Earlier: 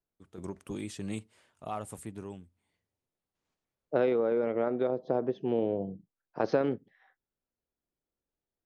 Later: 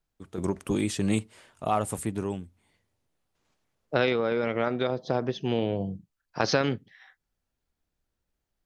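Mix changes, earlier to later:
first voice +11.0 dB
second voice: remove resonant band-pass 420 Hz, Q 0.92

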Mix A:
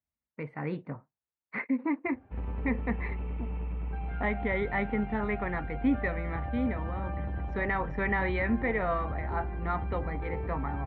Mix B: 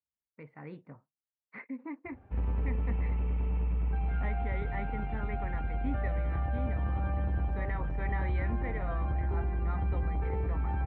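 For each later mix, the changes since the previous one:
speech −11.0 dB
background: add low-shelf EQ 110 Hz +6 dB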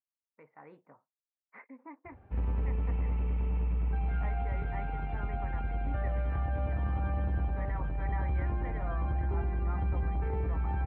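speech: add resonant band-pass 910 Hz, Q 1.1

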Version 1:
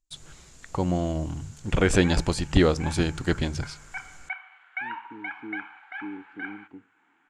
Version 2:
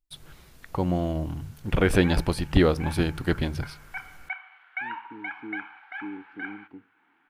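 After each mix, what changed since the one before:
first voice: remove low-pass with resonance 7,200 Hz, resonance Q 5.9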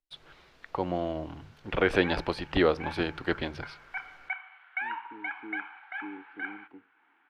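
master: add three-way crossover with the lows and the highs turned down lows −13 dB, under 320 Hz, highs −23 dB, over 4,900 Hz

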